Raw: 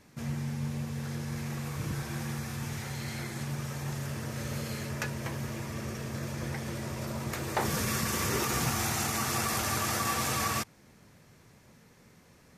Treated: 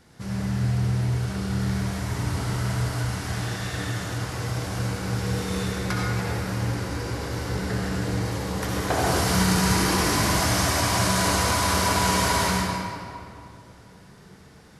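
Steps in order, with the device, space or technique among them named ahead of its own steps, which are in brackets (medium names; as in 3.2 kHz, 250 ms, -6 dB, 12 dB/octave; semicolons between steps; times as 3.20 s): slowed and reverbed (tape speed -15%; reverberation RT60 2.5 s, pre-delay 59 ms, DRR -4 dB); trim +3 dB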